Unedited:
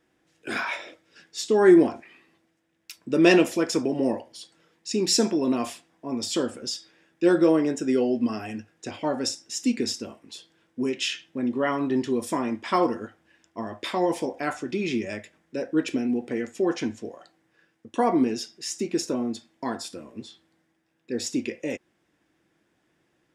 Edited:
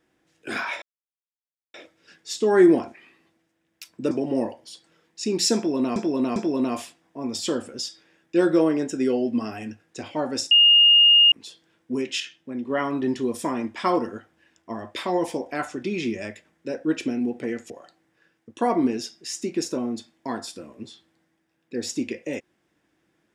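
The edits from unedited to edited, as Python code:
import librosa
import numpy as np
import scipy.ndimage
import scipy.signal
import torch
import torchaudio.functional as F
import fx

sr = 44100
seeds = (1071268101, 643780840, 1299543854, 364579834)

y = fx.edit(x, sr, fx.insert_silence(at_s=0.82, length_s=0.92),
    fx.cut(start_s=3.19, length_s=0.6),
    fx.repeat(start_s=5.24, length_s=0.4, count=3),
    fx.bleep(start_s=9.39, length_s=0.81, hz=2840.0, db=-11.0),
    fx.clip_gain(start_s=11.08, length_s=0.5, db=-4.5),
    fx.cut(start_s=16.58, length_s=0.49), tone=tone)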